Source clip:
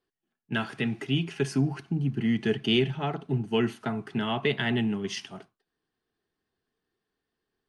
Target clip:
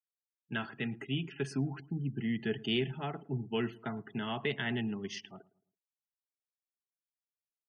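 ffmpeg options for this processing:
ffmpeg -i in.wav -filter_complex "[0:a]afftfilt=real='re*gte(hypot(re,im),0.00794)':imag='im*gte(hypot(re,im),0.00794)':win_size=1024:overlap=0.75,equalizer=frequency=1800:width=1.5:gain=2.5,asplit=2[link_01][link_02];[link_02]adelay=110,lowpass=frequency=830:poles=1,volume=-19.5dB,asplit=2[link_03][link_04];[link_04]adelay=110,lowpass=frequency=830:poles=1,volume=0.44,asplit=2[link_05][link_06];[link_06]adelay=110,lowpass=frequency=830:poles=1,volume=0.44[link_07];[link_01][link_03][link_05][link_07]amix=inputs=4:normalize=0,volume=-8dB" out.wav

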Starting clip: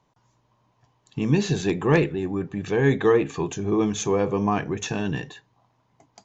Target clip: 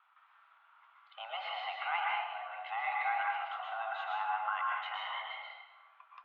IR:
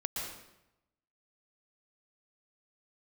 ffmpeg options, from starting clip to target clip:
-filter_complex "[1:a]atrim=start_sample=2205[link_01];[0:a][link_01]afir=irnorm=-1:irlink=0,highpass=frequency=510:width_type=q:width=0.5412,highpass=frequency=510:width_type=q:width=1.307,lowpass=frequency=2900:width_type=q:width=0.5176,lowpass=frequency=2900:width_type=q:width=0.7071,lowpass=frequency=2900:width_type=q:width=1.932,afreqshift=350,acompressor=threshold=-60dB:ratio=1.5,volume=3.5dB"

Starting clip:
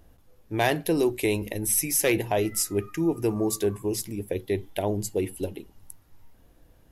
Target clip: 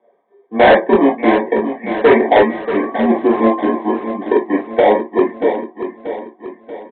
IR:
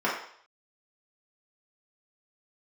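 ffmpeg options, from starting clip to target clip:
-filter_complex "[0:a]asuperstop=centerf=1500:order=8:qfactor=5.6,highpass=frequency=590:width_type=q:width=0.5412,highpass=frequency=590:width_type=q:width=1.307,lowpass=frequency=2200:width_type=q:width=0.5176,lowpass=frequency=2200:width_type=q:width=0.7071,lowpass=frequency=2200:width_type=q:width=1.932,afreqshift=-100,tiltshelf=frequency=1300:gain=7,asplit=2[link_01][link_02];[link_02]acrusher=samples=32:mix=1:aa=0.000001,volume=-4dB[link_03];[link_01][link_03]amix=inputs=2:normalize=0[link_04];[1:a]atrim=start_sample=2205,atrim=end_sample=3087[link_05];[link_04][link_05]afir=irnorm=-1:irlink=0,afftdn=noise_reduction=13:noise_floor=-37,aresample=8000,volume=7.5dB,asoftclip=hard,volume=-7.5dB,aresample=44100,aecho=1:1:634|1268|1902|2536|3170:0.316|0.155|0.0759|0.0372|0.0182,volume=3.5dB"

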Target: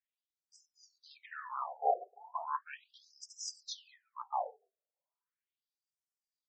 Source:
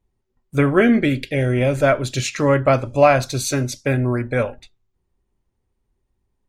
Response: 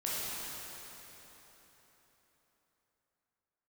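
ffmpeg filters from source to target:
-af "bandreject=frequency=60:width_type=h:width=6,bandreject=frequency=120:width_type=h:width=6,bandreject=frequency=180:width_type=h:width=6,bandreject=frequency=240:width_type=h:width=6,bandreject=frequency=300:width_type=h:width=6,asetrate=23361,aresample=44100,atempo=1.88775,afftfilt=real='re*between(b*sr/1024,540*pow(7200/540,0.5+0.5*sin(2*PI*0.37*pts/sr))/1.41,540*pow(7200/540,0.5+0.5*sin(2*PI*0.37*pts/sr))*1.41)':imag='im*between(b*sr/1024,540*pow(7200/540,0.5+0.5*sin(2*PI*0.37*pts/sr))/1.41,540*pow(7200/540,0.5+0.5*sin(2*PI*0.37*pts/sr))*1.41)':win_size=1024:overlap=0.75,volume=-4dB"

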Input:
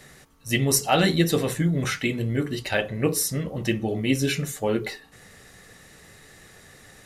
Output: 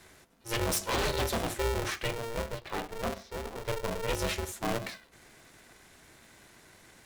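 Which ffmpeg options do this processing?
ffmpeg -i in.wav -filter_complex "[0:a]aeval=exprs='0.15*(abs(mod(val(0)/0.15+3,4)-2)-1)':channel_layout=same,asettb=1/sr,asplit=3[link_01][link_02][link_03];[link_01]atrim=end=2.184[link_04];[link_02]atrim=start=2.18:end=4.09,asetpts=PTS-STARTPTS,afade=type=in:duration=0.004:curve=qsin,afade=type=out:start_time=1.906:duration=0.004:curve=qsin,highpass=frequency=180:width=0.5412,highpass=frequency=180:width=1.3066,equalizer=frequency=200:width_type=q:width=4:gain=5,equalizer=frequency=540:width_type=q:width=4:gain=-4,equalizer=frequency=950:width_type=q:width=4:gain=7,equalizer=frequency=1600:width_type=q:width=4:gain=-8,equalizer=frequency=2700:width_type=q:width=4:gain=-10,lowpass=frequency=3300:width=0.5412,lowpass=frequency=3300:width=1.3066[link_05];[link_03]atrim=start=4.086[link_06];[link_04][link_05]acrossfade=duration=0.004:curve1=hsin:curve2=qsin[link_07];[link_07][link_06]acrossfade=duration=0.004:curve1=qsin:curve2=hsin,aeval=exprs='val(0)*sgn(sin(2*PI*230*n/s))':channel_layout=same,volume=-7dB" out.wav

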